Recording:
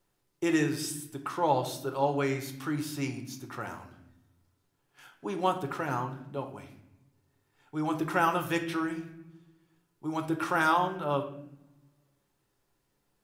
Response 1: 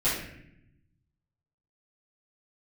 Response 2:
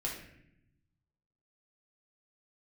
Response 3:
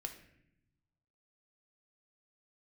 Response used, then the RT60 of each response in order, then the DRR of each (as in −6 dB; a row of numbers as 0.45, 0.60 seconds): 3; 0.75, 0.75, 0.75 seconds; −13.0, −3.0, 5.0 decibels